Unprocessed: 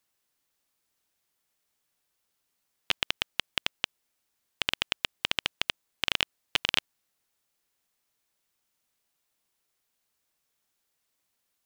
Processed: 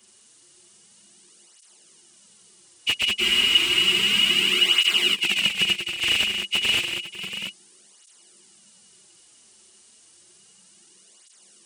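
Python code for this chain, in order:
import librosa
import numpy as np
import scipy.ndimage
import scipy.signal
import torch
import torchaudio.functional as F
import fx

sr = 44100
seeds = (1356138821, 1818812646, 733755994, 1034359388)

p1 = fx.freq_compress(x, sr, knee_hz=2000.0, ratio=1.5)
p2 = scipy.signal.sosfilt(scipy.signal.butter(2, 54.0, 'highpass', fs=sr, output='sos'), p1)
p3 = fx.high_shelf(p2, sr, hz=4500.0, db=10.0)
p4 = fx.over_compress(p3, sr, threshold_db=-35.0, ratio=-0.5)
p5 = p3 + F.gain(torch.from_numpy(p4), 0.5).numpy()
p6 = np.clip(p5, -10.0 ** (-27.5 / 20.0), 10.0 ** (-27.5 / 20.0))
p7 = fx.small_body(p6, sr, hz=(200.0, 350.0, 2900.0), ring_ms=75, db=16)
p8 = p7 + fx.echo_multitap(p7, sr, ms=(190, 500, 682), db=(-7.0, -14.5, -10.0), dry=0)
p9 = fx.spec_freeze(p8, sr, seeds[0], at_s=3.23, hold_s=1.92)
p10 = fx.flanger_cancel(p9, sr, hz=0.31, depth_ms=6.7)
y = F.gain(torch.from_numpy(p10), 8.5).numpy()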